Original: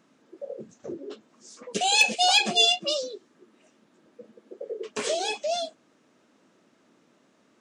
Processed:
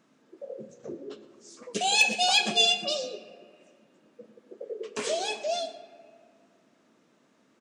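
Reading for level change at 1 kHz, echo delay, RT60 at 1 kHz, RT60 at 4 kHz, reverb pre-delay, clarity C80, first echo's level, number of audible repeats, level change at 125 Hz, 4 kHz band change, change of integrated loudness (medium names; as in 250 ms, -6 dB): -3.0 dB, 115 ms, 1.8 s, 1.3 s, 4 ms, 11.5 dB, -17.5 dB, 1, -2.0 dB, -2.0 dB, -2.0 dB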